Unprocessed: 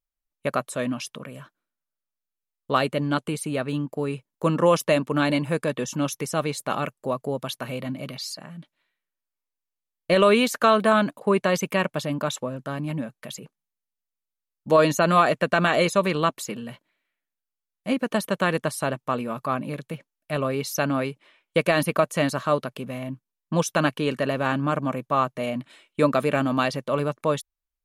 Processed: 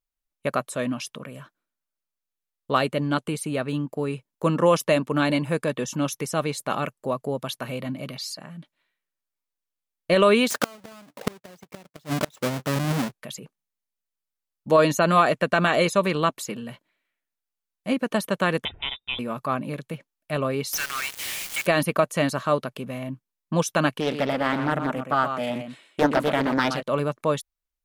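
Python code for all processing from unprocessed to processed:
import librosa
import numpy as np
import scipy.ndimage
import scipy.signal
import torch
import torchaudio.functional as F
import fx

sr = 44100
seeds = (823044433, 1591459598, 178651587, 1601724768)

y = fx.chain(x, sr, fx.halfwave_hold(),
    fx.highpass(hz=90.0, slope=12),
    fx.gate_flip(shuts_db=-10.0, range_db=-31), at=(10.5, 13.12))
y = fx.chain(y, sr, fx.freq_invert(carrier_hz=3700),
    fx.tilt_eq(slope=-3.5), at=(18.65, 19.19))
y = fx.chain(y, sr, fx.zero_step(step_db=-33.5),
    fx.highpass(hz=1500.0, slope=24),
    fx.quant_companded(bits=2), at=(20.73, 21.66))
y = fx.chain(y, sr, fx.highpass(hz=97.0, slope=6),
    fx.echo_single(ms=123, db=-8.0),
    fx.doppler_dist(depth_ms=0.54), at=(24.0, 26.83))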